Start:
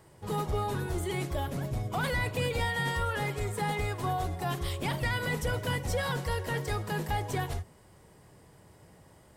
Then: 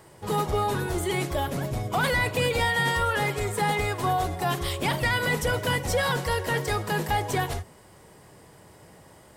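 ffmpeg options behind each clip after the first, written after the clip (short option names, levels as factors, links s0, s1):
-af "lowshelf=f=180:g=-7,volume=2.37"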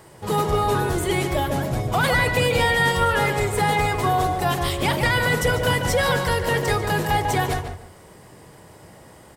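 -filter_complex "[0:a]asplit=2[s0][s1];[s1]adelay=146,lowpass=f=2400:p=1,volume=0.562,asplit=2[s2][s3];[s3]adelay=146,lowpass=f=2400:p=1,volume=0.25,asplit=2[s4][s5];[s5]adelay=146,lowpass=f=2400:p=1,volume=0.25[s6];[s0][s2][s4][s6]amix=inputs=4:normalize=0,volume=1.58"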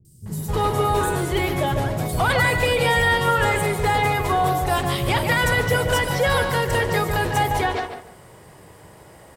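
-filter_complex "[0:a]acrossover=split=230|5500[s0][s1][s2];[s2]adelay=50[s3];[s1]adelay=260[s4];[s0][s4][s3]amix=inputs=3:normalize=0,volume=1.12"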